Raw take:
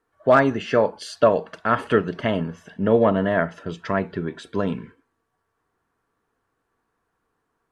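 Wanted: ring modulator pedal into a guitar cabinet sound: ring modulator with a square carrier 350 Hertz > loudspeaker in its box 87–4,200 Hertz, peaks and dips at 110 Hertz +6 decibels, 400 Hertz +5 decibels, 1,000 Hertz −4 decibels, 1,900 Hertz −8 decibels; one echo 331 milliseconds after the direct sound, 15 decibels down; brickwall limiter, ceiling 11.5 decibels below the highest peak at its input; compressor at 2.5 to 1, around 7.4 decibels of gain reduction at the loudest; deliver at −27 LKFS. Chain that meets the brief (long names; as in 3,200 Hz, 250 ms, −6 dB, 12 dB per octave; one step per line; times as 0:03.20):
downward compressor 2.5 to 1, threshold −22 dBFS
brickwall limiter −20 dBFS
single-tap delay 331 ms −15 dB
ring modulator with a square carrier 350 Hz
loudspeaker in its box 87–4,200 Hz, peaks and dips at 110 Hz +6 dB, 400 Hz +5 dB, 1,000 Hz −4 dB, 1,900 Hz −8 dB
level +6 dB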